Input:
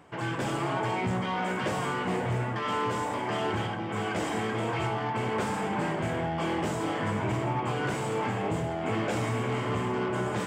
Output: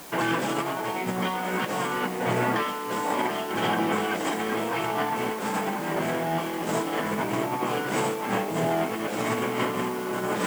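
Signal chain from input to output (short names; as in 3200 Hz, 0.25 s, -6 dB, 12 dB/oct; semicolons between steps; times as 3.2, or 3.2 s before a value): HPF 170 Hz 24 dB/oct; negative-ratio compressor -33 dBFS, ratio -0.5; added noise white -52 dBFS; gain +6.5 dB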